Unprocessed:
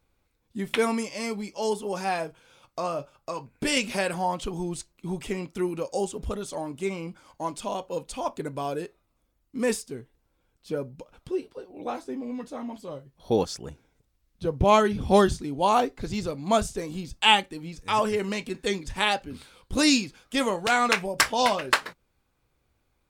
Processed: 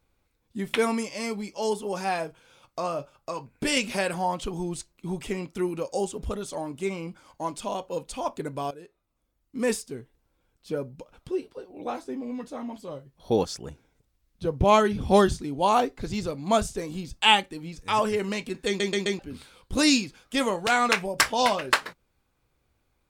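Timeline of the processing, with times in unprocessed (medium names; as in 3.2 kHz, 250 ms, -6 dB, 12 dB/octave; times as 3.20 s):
8.71–9.68 s: fade in, from -16.5 dB
18.67 s: stutter in place 0.13 s, 4 plays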